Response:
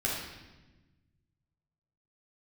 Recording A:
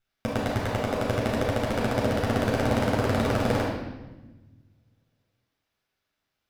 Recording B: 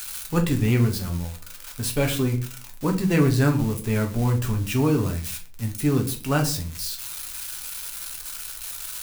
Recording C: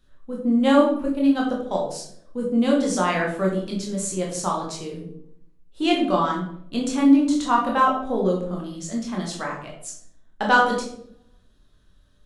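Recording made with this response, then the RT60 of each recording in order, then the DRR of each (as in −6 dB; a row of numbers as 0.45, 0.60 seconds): A; 1.2, 0.40, 0.70 seconds; −5.5, 2.0, −2.0 decibels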